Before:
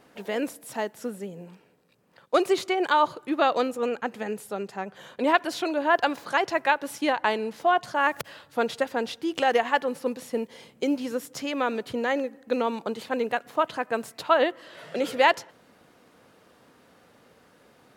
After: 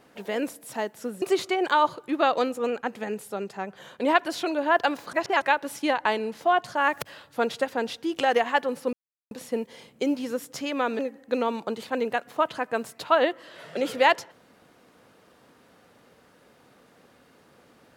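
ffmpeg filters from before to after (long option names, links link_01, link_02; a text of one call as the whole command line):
ffmpeg -i in.wav -filter_complex "[0:a]asplit=6[link_01][link_02][link_03][link_04][link_05][link_06];[link_01]atrim=end=1.222[link_07];[link_02]atrim=start=2.408:end=6.322[link_08];[link_03]atrim=start=6.318:end=6.612,asetpts=PTS-STARTPTS,areverse[link_09];[link_04]atrim=start=6.608:end=10.12,asetpts=PTS-STARTPTS,afade=type=out:start_time=3.508:duration=0.004:curve=hsin,apad=pad_dur=0.38[link_10];[link_05]atrim=start=10.12:end=11.802,asetpts=PTS-STARTPTS,afade=type=in:duration=0.004:curve=hsin[link_11];[link_06]atrim=start=12.178[link_12];[link_07][link_08]acrossfade=duration=0.004:curve1=hsin:curve2=hsin[link_13];[link_13][link_09]acrossfade=duration=0.004:curve1=hsin:curve2=hsin[link_14];[link_10][link_11]concat=n=2:v=0:a=1[link_15];[link_14][link_15]acrossfade=duration=0.004:curve1=hsin:curve2=hsin[link_16];[link_16][link_12]acrossfade=duration=0.004:curve1=hsin:curve2=hsin" out.wav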